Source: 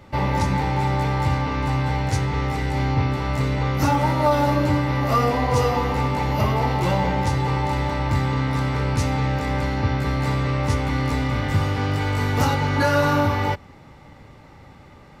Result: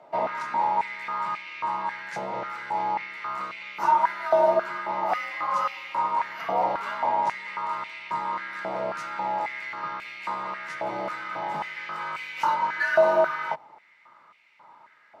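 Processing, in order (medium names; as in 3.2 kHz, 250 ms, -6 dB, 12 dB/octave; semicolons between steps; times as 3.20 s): tilt EQ -3 dB/octave; frequency shift +60 Hz; step-sequenced high-pass 3.7 Hz 690–2400 Hz; trim -7.5 dB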